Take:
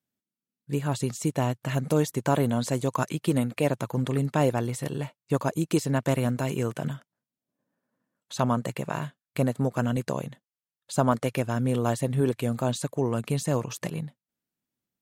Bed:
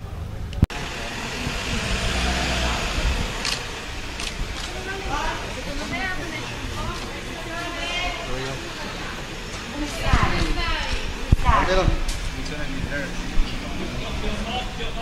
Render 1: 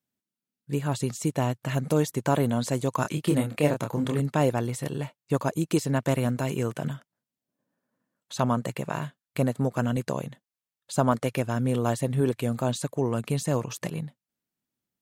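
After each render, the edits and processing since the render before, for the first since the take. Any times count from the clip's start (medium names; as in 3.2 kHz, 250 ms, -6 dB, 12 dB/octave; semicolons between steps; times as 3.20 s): 3.02–4.20 s: doubling 27 ms -5 dB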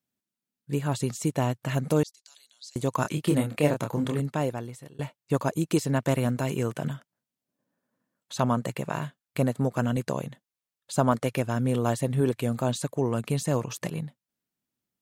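2.03–2.76 s: ladder band-pass 5.2 kHz, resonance 60%; 3.98–4.99 s: fade out, to -23 dB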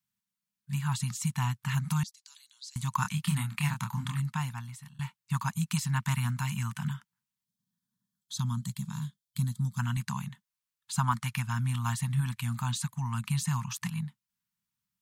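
elliptic band-stop 200–940 Hz, stop band 40 dB; 7.45–9.79 s: time-frequency box 550–3100 Hz -14 dB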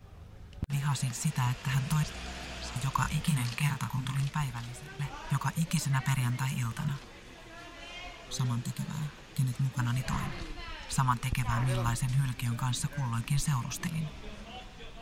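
add bed -18 dB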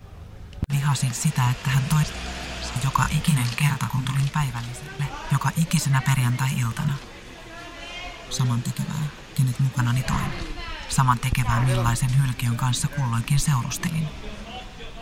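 trim +8.5 dB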